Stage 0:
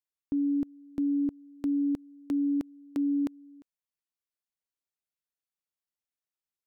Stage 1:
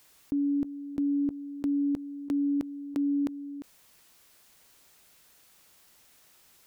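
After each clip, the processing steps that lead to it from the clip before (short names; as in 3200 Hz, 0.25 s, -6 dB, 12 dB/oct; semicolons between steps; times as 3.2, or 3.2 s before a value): fast leveller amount 50%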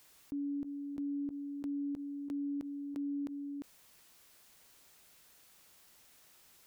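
limiter -31 dBFS, peak gain reduction 8.5 dB; gain -2.5 dB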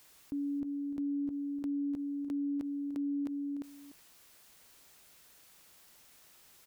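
echo 0.296 s -13 dB; gain +2 dB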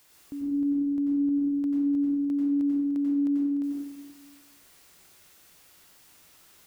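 reverb RT60 1.0 s, pre-delay 85 ms, DRR -2.5 dB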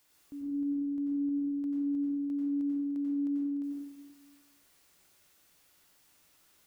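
resonator 290 Hz, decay 0.21 s, harmonics all, mix 50%; gain -4 dB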